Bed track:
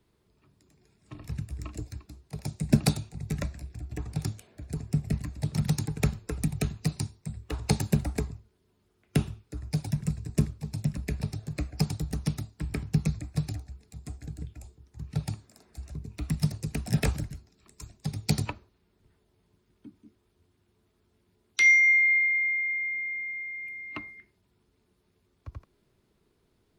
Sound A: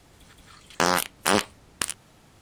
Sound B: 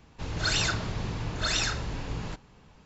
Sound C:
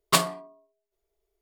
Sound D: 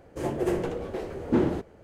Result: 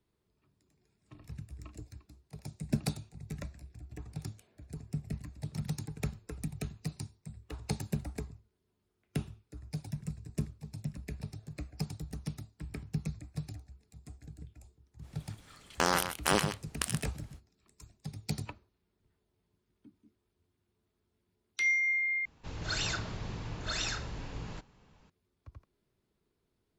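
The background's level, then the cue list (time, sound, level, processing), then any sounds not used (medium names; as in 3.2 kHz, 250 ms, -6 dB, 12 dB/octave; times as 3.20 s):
bed track -9.5 dB
15.00 s: add A -6.5 dB, fades 0.05 s + delay 129 ms -9 dB
22.25 s: replace with B -7 dB
not used: C, D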